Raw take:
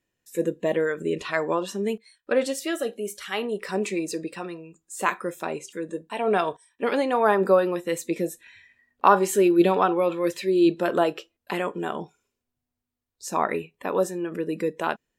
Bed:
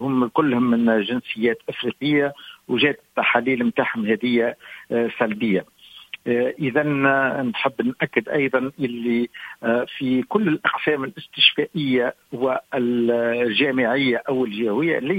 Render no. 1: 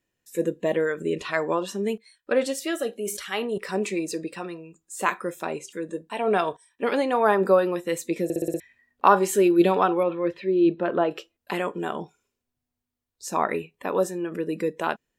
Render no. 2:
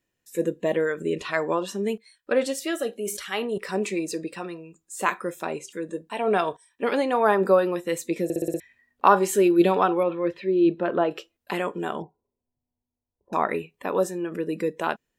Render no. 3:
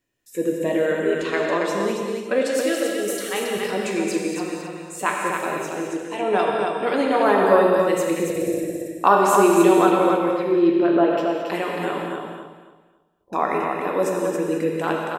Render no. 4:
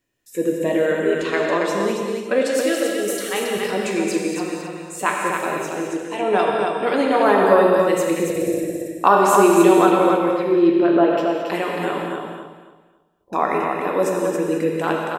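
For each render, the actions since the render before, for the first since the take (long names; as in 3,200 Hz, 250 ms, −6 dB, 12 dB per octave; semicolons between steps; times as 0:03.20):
0:02.99–0:03.58: level that may fall only so fast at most 63 dB per second; 0:08.24: stutter in place 0.06 s, 6 plays; 0:10.03–0:11.11: high-frequency loss of the air 380 metres
0:12.02–0:13.33: Chebyshev low-pass filter 980 Hz, order 5
on a send: repeating echo 275 ms, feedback 26%, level −4.5 dB; on the sum: reverb whose tail is shaped and stops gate 250 ms flat, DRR 0 dB
level +2 dB; brickwall limiter −2 dBFS, peak gain reduction 1.5 dB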